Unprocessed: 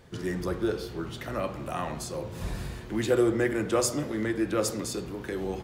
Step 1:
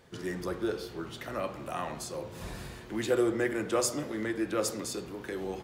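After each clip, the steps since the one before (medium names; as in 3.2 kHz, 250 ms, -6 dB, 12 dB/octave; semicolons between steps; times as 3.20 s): bass shelf 170 Hz -8.5 dB; trim -2 dB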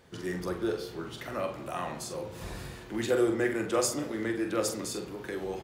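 doubling 44 ms -7.5 dB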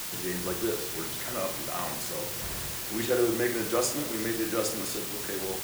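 word length cut 6-bit, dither triangular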